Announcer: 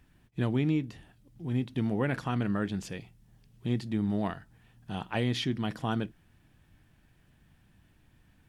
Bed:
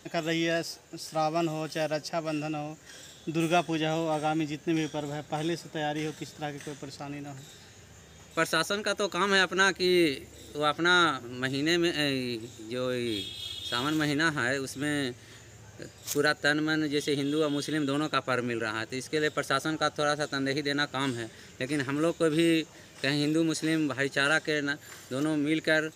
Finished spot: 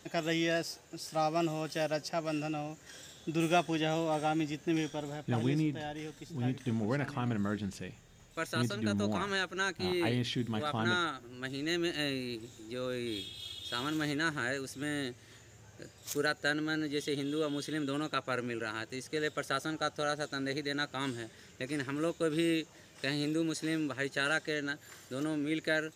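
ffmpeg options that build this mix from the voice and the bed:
-filter_complex "[0:a]adelay=4900,volume=0.668[s0];[1:a]volume=1.06,afade=t=out:st=4.67:d=0.92:silence=0.473151,afade=t=in:st=11.36:d=0.58:silence=0.668344[s1];[s0][s1]amix=inputs=2:normalize=0"

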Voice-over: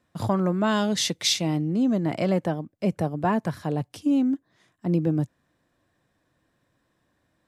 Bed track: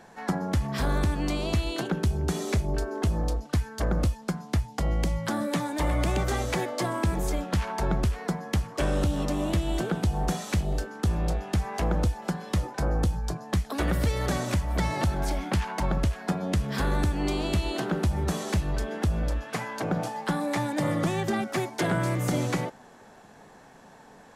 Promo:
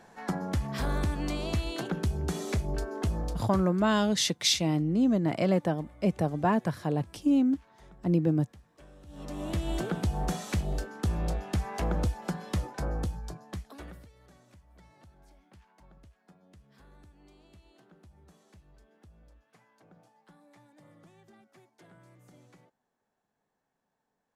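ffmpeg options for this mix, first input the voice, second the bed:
-filter_complex "[0:a]adelay=3200,volume=0.794[s0];[1:a]volume=10.6,afade=t=out:st=3.12:d=0.77:silence=0.0630957,afade=t=in:st=9.06:d=0.64:silence=0.0595662,afade=t=out:st=12.47:d=1.61:silence=0.0421697[s1];[s0][s1]amix=inputs=2:normalize=0"

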